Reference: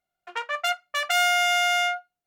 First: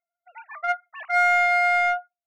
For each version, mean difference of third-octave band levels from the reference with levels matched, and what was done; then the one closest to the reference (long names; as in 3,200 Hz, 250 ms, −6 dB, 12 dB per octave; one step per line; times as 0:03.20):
7.5 dB: three sine waves on the formant tracks
in parallel at −4 dB: soft clipping −27.5 dBFS, distortion −7 dB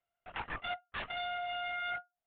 15.0 dB: reversed playback
downward compressor 5 to 1, threshold −31 dBFS, peak gain reduction 12.5 dB
reversed playback
linear-prediction vocoder at 8 kHz whisper
level −4 dB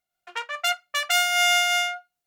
2.0 dB: high-shelf EQ 2,100 Hz +8 dB
amplitude modulation by smooth noise, depth 55%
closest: third